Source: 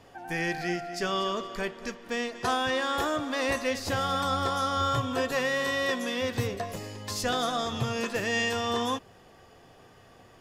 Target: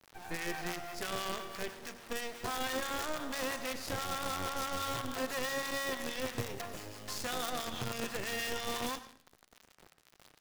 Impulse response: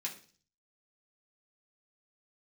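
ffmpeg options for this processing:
-filter_complex "[0:a]highpass=frequency=110:poles=1,acrusher=bits=5:dc=4:mix=0:aa=0.000001,acrossover=split=650[link_01][link_02];[link_01]aeval=exprs='val(0)*(1-0.5/2+0.5/2*cos(2*PI*6.1*n/s))':channel_layout=same[link_03];[link_02]aeval=exprs='val(0)*(1-0.5/2-0.5/2*cos(2*PI*6.1*n/s))':channel_layout=same[link_04];[link_03][link_04]amix=inputs=2:normalize=0,alimiter=level_in=1.5dB:limit=-24dB:level=0:latency=1:release=33,volume=-1.5dB,asplit=2[link_05][link_06];[1:a]atrim=start_sample=2205,asetrate=32634,aresample=44100,adelay=96[link_07];[link_06][link_07]afir=irnorm=-1:irlink=0,volume=-16dB[link_08];[link_05][link_08]amix=inputs=2:normalize=0"

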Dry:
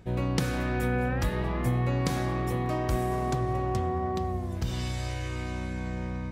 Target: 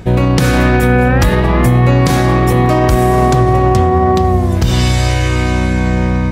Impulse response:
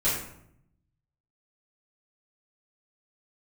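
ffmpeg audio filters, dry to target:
-af "alimiter=level_in=21dB:limit=-1dB:release=50:level=0:latency=1,volume=-1dB"

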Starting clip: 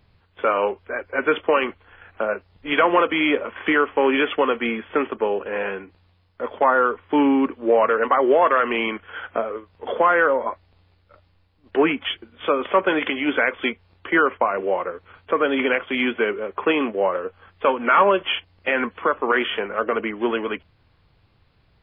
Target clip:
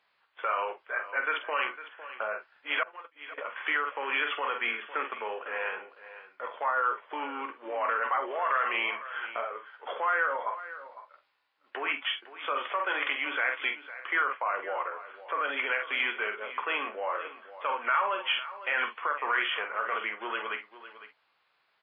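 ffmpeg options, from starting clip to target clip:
ffmpeg -i in.wav -filter_complex "[0:a]lowpass=frequency=1900:poles=1,asplit=2[link_01][link_02];[link_02]aecho=0:1:14|47|61:0.316|0.335|0.15[link_03];[link_01][link_03]amix=inputs=2:normalize=0,alimiter=limit=-14.5dB:level=0:latency=1:release=29,asettb=1/sr,asplit=3[link_04][link_05][link_06];[link_04]atrim=end=2.834[link_07];[link_05]atrim=start=2.83:end=3.38,asetpts=PTS-STARTPTS,afade=type=in:duration=0.004:curve=qsin,afade=type=out:start_time=0.546:duration=0.004:curve=qsin,agate=range=-39dB:threshold=-18dB:ratio=16:detection=peak[link_08];[link_06]atrim=start=3.376[link_09];[link_07][link_08]acrossfade=duration=0.004:curve1=hsin:curve2=qsin[link_10];[link_10][link_09]acrossfade=duration=0.004:curve1=qsin:curve2=hsin,highpass=1100,asplit=2[link_11][link_12];[link_12]aecho=0:1:505:0.188[link_13];[link_11][link_13]amix=inputs=2:normalize=0" out.wav

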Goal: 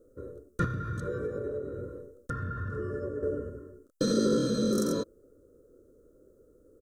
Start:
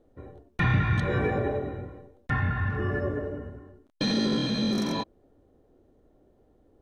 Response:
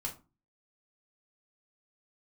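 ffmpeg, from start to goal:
-filter_complex "[0:a]firequalizer=gain_entry='entry(220,0);entry(510,11);entry(800,-25);entry(1300,9);entry(2100,-22);entry(3200,-11);entry(5000,2);entry(7300,12)':delay=0.05:min_phase=1,asettb=1/sr,asplit=3[link_01][link_02][link_03];[link_01]atrim=end=0.644[link_04];[link_02]atrim=start=0.64:end=3.23,asetpts=PTS-STARTPTS,afade=type=in:duration=0.004:curve=qsin,afade=type=out:start_time=2.586:duration=0.004:curve=qsin,acompressor=threshold=-30dB:ratio=5[link_05];[link_03]atrim=start=3.226[link_06];[link_04][link_05]acrossfade=duration=0.004:curve1=hsin:curve2=qsin[link_07];[link_07][link_06]acrossfade=duration=0.004:curve1=qsin:curve2=hsin,volume=-2dB"

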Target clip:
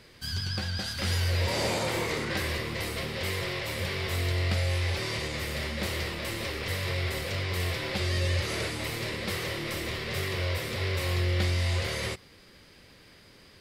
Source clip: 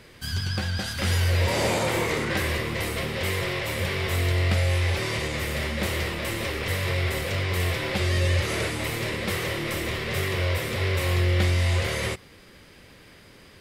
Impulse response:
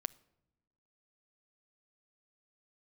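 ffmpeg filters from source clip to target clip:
-af "equalizer=frequency=4600:width=2.2:gain=5.5,volume=-5dB"

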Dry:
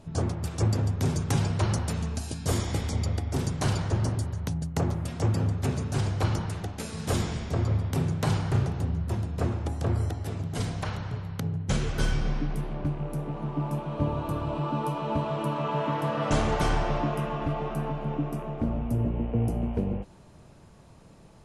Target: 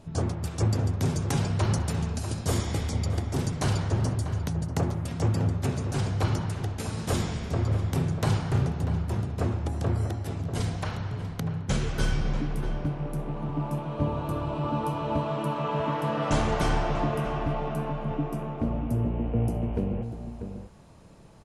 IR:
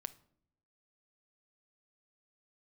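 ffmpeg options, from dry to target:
-filter_complex "[0:a]asplit=2[link_01][link_02];[link_02]adelay=641.4,volume=-9dB,highshelf=frequency=4000:gain=-14.4[link_03];[link_01][link_03]amix=inputs=2:normalize=0"

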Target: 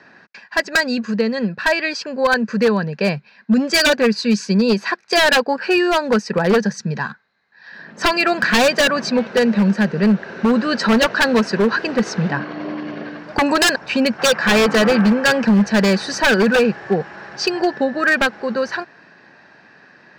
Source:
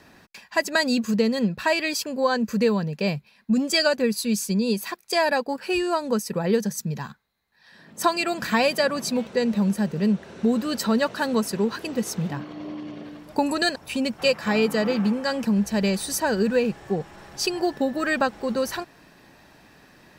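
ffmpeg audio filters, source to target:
ffmpeg -i in.wav -af "dynaudnorm=framelen=210:gausssize=31:maxgain=11dB,highpass=170,equalizer=frequency=290:width_type=q:width=4:gain=-4,equalizer=frequency=1600:width_type=q:width=4:gain=9,equalizer=frequency=3400:width_type=q:width=4:gain=-7,lowpass=frequency=5000:width=0.5412,lowpass=frequency=5000:width=1.3066,aeval=exprs='0.266*(abs(mod(val(0)/0.266+3,4)-2)-1)':channel_layout=same,volume=3.5dB" out.wav

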